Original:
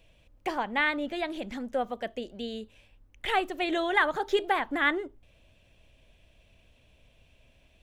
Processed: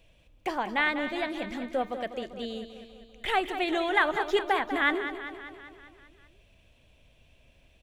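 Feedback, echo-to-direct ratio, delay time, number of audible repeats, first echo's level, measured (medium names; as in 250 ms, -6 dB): 60%, -8.5 dB, 196 ms, 6, -10.5 dB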